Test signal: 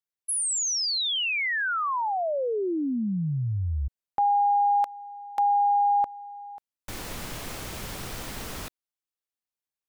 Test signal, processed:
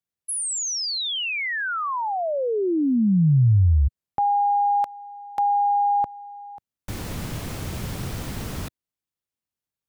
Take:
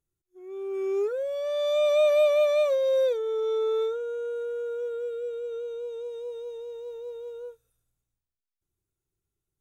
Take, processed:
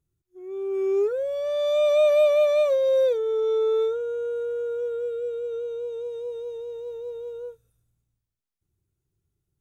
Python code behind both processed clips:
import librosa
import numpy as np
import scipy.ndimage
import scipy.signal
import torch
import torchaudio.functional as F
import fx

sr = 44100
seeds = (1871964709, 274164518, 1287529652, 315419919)

y = fx.peak_eq(x, sr, hz=110.0, db=11.5, octaves=3.0)